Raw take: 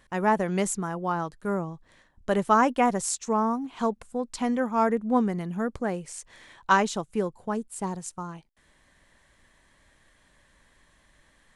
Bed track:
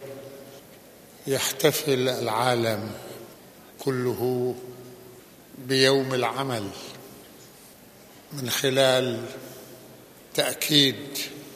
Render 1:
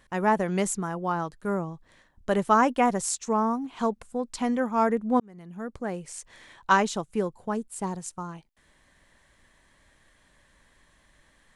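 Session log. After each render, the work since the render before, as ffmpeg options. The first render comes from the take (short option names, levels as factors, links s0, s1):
-filter_complex "[0:a]asplit=2[s0][s1];[s0]atrim=end=5.2,asetpts=PTS-STARTPTS,afade=t=out:st=5.196:d=0.004:c=hsin[s2];[s1]atrim=start=5.2,asetpts=PTS-STARTPTS,afade=t=in:d=0.97[s3];[s2][s3]concat=n=2:v=0:a=1"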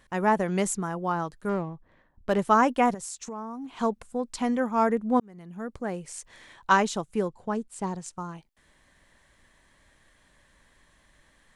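-filter_complex "[0:a]asettb=1/sr,asplit=3[s0][s1][s2];[s0]atrim=end=1.494[s3];[s1]atrim=start=1.49:end=2.39,asetpts=PTS-STARTPTS,afade=t=in:d=0.004:c=qsin,afade=t=out:st=0.896:d=0.004:c=qsin,adynamicsmooth=sensitivity=6:basefreq=1800[s4];[s2]atrim=start=2.386[s5];[s3][s4]acrossfade=d=0.004:c1=hsin:c2=qsin[s6];[s6][s5]acrossfade=d=0.004:c1=qsin:c2=hsin,asettb=1/sr,asplit=3[s7][s8][s9];[s7]atrim=end=2.944[s10];[s8]atrim=start=2.94:end=3.8,asetpts=PTS-STARTPTS,afade=t=in:d=0.004:c=qsin,afade=t=out:st=0.856:d=0.004:c=qsin,acompressor=threshold=0.02:ratio=6:attack=3.2:release=140:knee=1:detection=peak[s11];[s9]atrim=start=3.796[s12];[s10][s11]acrossfade=d=0.004:c1=hsin:c2=qsin[s13];[s13][s12]acrossfade=d=0.004:c1=qsin:c2=hsin,asettb=1/sr,asplit=3[s14][s15][s16];[s14]atrim=end=7.284[s17];[s15]atrim=start=7.28:end=8.17,asetpts=PTS-STARTPTS,afade=t=in:d=0.004:c=qsin,afade=t=out:st=0.886:d=0.004:c=qsin,lowpass=7500[s18];[s16]atrim=start=8.166[s19];[s17][s18]acrossfade=d=0.004:c1=hsin:c2=qsin[s20];[s20][s19]acrossfade=d=0.004:c1=qsin:c2=hsin"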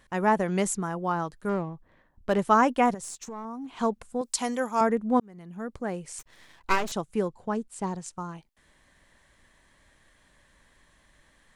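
-filter_complex "[0:a]asettb=1/sr,asplit=3[s0][s1][s2];[s0]atrim=end=3.034[s3];[s1]atrim=start=3.03:end=3.45,asetpts=PTS-STARTPTS,afade=t=in:d=0.004:c=qsin,afade=t=out:st=0.416:d=0.004:c=qsin,aeval=exprs='if(lt(val(0),0),0.708*val(0),val(0))':c=same[s4];[s2]atrim=start=3.446[s5];[s3][s4]acrossfade=d=0.004:c1=hsin:c2=qsin[s6];[s6][s5]acrossfade=d=0.004:c1=qsin:c2=hsin,asettb=1/sr,asplit=3[s7][s8][s9];[s7]atrim=end=4.214[s10];[s8]atrim=start=4.21:end=4.81,asetpts=PTS-STARTPTS,afade=t=in:d=0.004:c=qsin,afade=t=out:st=0.596:d=0.004:c=qsin,bass=f=250:g=-11,treble=f=4000:g=12[s11];[s9]atrim=start=4.806[s12];[s10][s11]acrossfade=d=0.004:c1=hsin:c2=qsin[s13];[s13][s12]acrossfade=d=0.004:c1=qsin:c2=hsin,asettb=1/sr,asplit=3[s14][s15][s16];[s14]atrim=end=6.194[s17];[s15]atrim=start=6.19:end=6.92,asetpts=PTS-STARTPTS,afade=t=in:d=0.004:c=qsin,afade=t=out:st=0.726:d=0.004:c=qsin,aeval=exprs='max(val(0),0)':c=same[s18];[s16]atrim=start=6.916[s19];[s17][s18]acrossfade=d=0.004:c1=hsin:c2=qsin[s20];[s20][s19]acrossfade=d=0.004:c1=qsin:c2=hsin"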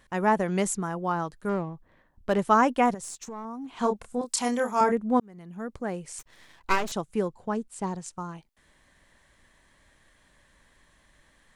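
-filter_complex "[0:a]asettb=1/sr,asplit=3[s0][s1][s2];[s0]atrim=end=3.794[s3];[s1]atrim=start=3.79:end=4.92,asetpts=PTS-STARTPTS,afade=t=in:d=0.004:c=qsin,afade=t=out:st=1.126:d=0.004:c=qsin,asplit=2[s4][s5];[s5]adelay=29,volume=0.562[s6];[s4][s6]amix=inputs=2:normalize=0,atrim=end_sample=49833[s7];[s2]atrim=start=4.916[s8];[s3][s7]acrossfade=d=0.004:c1=hsin:c2=qsin[s9];[s9][s8]acrossfade=d=0.004:c1=qsin:c2=hsin"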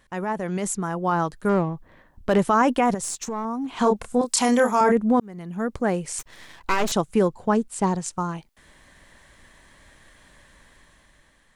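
-af "alimiter=limit=0.112:level=0:latency=1:release=21,dynaudnorm=f=430:g=5:m=2.82"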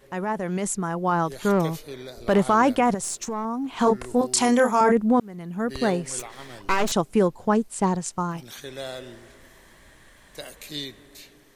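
-filter_complex "[1:a]volume=0.178[s0];[0:a][s0]amix=inputs=2:normalize=0"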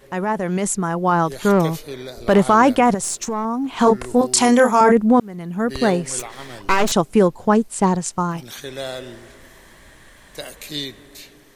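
-af "volume=1.88"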